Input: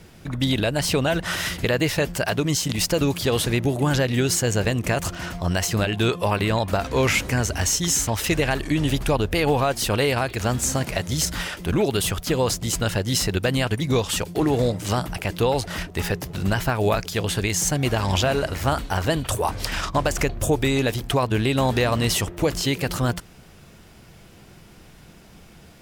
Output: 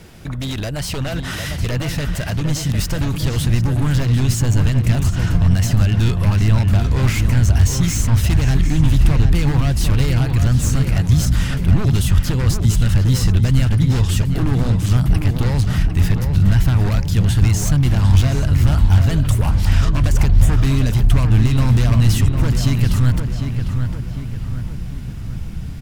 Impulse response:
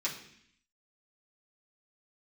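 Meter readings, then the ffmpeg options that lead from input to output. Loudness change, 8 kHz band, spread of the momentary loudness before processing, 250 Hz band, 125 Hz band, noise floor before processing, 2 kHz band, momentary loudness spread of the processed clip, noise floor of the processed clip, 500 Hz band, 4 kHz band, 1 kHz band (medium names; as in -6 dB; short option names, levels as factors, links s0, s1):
+6.0 dB, -2.5 dB, 5 LU, +3.5 dB, +12.0 dB, -48 dBFS, -3.0 dB, 9 LU, -26 dBFS, -7.0 dB, -2.5 dB, -4.5 dB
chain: -filter_complex "[0:a]aeval=exprs='0.133*(abs(mod(val(0)/0.133+3,4)-2)-1)':c=same,alimiter=level_in=1.06:limit=0.0631:level=0:latency=1:release=133,volume=0.944,asubboost=boost=9:cutoff=150,asplit=2[s0][s1];[s1]adelay=752,lowpass=f=2700:p=1,volume=0.501,asplit=2[s2][s3];[s3]adelay=752,lowpass=f=2700:p=1,volume=0.52,asplit=2[s4][s5];[s5]adelay=752,lowpass=f=2700:p=1,volume=0.52,asplit=2[s6][s7];[s7]adelay=752,lowpass=f=2700:p=1,volume=0.52,asplit=2[s8][s9];[s9]adelay=752,lowpass=f=2700:p=1,volume=0.52,asplit=2[s10][s11];[s11]adelay=752,lowpass=f=2700:p=1,volume=0.52[s12];[s2][s4][s6][s8][s10][s12]amix=inputs=6:normalize=0[s13];[s0][s13]amix=inputs=2:normalize=0,volume=1.78"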